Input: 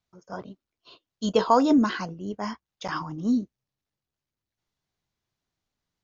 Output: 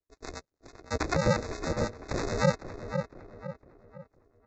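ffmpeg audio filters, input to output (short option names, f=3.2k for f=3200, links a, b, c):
-filter_complex "[0:a]aresample=11025,acrusher=samples=21:mix=1:aa=0.000001,aresample=44100,asuperstop=centerf=2200:order=12:qfactor=2.3,asetrate=59535,aresample=44100,highpass=95,highshelf=f=3k:g=8,dynaudnorm=f=130:g=5:m=11dB,acrossover=split=580[a][b];[a]aeval=exprs='val(0)*(1-0.7/2+0.7/2*cos(2*PI*9.3*n/s))':c=same[c];[b]aeval=exprs='val(0)*(1-0.7/2-0.7/2*cos(2*PI*9.3*n/s))':c=same[d];[c][d]amix=inputs=2:normalize=0,acrossover=split=3200[e][f];[f]acompressor=threshold=-35dB:ratio=4:attack=1:release=60[g];[e][g]amix=inputs=2:normalize=0,asplit=2[h][i];[i]adelay=506,lowpass=f=2.3k:p=1,volume=-9dB,asplit=2[j][k];[k]adelay=506,lowpass=f=2.3k:p=1,volume=0.41,asplit=2[l][m];[m]adelay=506,lowpass=f=2.3k:p=1,volume=0.41,asplit=2[n][o];[o]adelay=506,lowpass=f=2.3k:p=1,volume=0.41,asplit=2[p][q];[q]adelay=506,lowpass=f=2.3k:p=1,volume=0.41[r];[h][j][l][n][p][r]amix=inputs=6:normalize=0,asplit=2[s][t];[t]alimiter=limit=-16dB:level=0:latency=1:release=381,volume=-0.5dB[u];[s][u]amix=inputs=2:normalize=0,aeval=exprs='0.501*(cos(1*acos(clip(val(0)/0.501,-1,1)))-cos(1*PI/2))+0.0158*(cos(2*acos(clip(val(0)/0.501,-1,1)))-cos(2*PI/2))+0.00794*(cos(3*acos(clip(val(0)/0.501,-1,1)))-cos(3*PI/2))':c=same,aeval=exprs='val(0)*sin(2*PI*190*n/s)':c=same,volume=-5.5dB"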